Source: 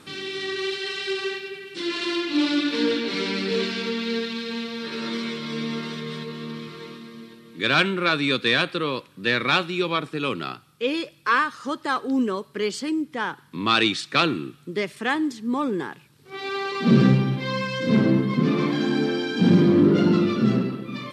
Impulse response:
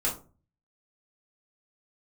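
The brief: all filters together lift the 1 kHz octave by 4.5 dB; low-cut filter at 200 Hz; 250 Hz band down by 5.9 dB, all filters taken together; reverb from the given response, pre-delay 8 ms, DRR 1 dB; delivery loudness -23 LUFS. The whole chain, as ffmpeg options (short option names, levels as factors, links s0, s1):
-filter_complex "[0:a]highpass=200,equalizer=f=250:t=o:g=-6,equalizer=f=1000:t=o:g=6,asplit=2[s0][s1];[1:a]atrim=start_sample=2205,adelay=8[s2];[s1][s2]afir=irnorm=-1:irlink=0,volume=0.355[s3];[s0][s3]amix=inputs=2:normalize=0,volume=0.891"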